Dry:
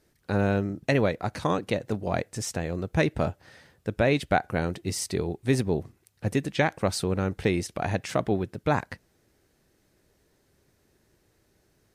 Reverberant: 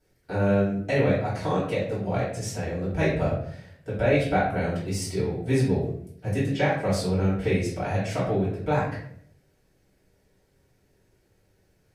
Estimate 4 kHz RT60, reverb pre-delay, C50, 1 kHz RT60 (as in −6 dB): 0.45 s, 3 ms, 3.5 dB, 0.55 s